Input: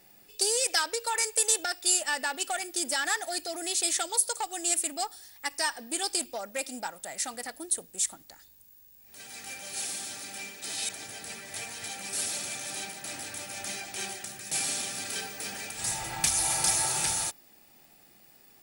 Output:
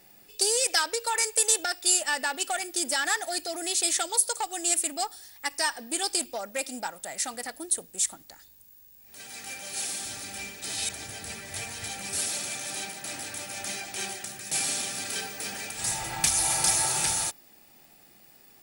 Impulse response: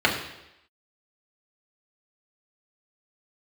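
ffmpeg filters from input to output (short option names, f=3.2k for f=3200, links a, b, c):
-filter_complex "[0:a]asettb=1/sr,asplit=3[a][b][c];[a]atrim=end=10.054[d];[b]atrim=start=10.05:end=12.19,asetpts=PTS-STARTPTS,afade=t=in:d=0.004:c=qsin,afade=t=out:st=2.136:d=0.004:c=qsin,equalizer=f=71:w=0.96:g=13.5[e];[c]atrim=start=12.186[f];[d][e]acrossfade=d=0.004:c1=hsin:c2=qsin[g];[g][f]acrossfade=d=0.004:c1=qsin:c2=hsin,volume=2dB"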